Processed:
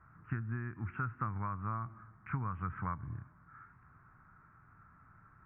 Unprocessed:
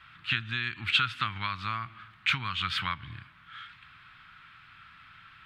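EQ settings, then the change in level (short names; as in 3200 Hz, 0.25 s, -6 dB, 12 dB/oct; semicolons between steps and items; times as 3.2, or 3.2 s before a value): Gaussian blur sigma 7.9 samples; bell 470 Hz +5.5 dB 0.39 oct; +1.5 dB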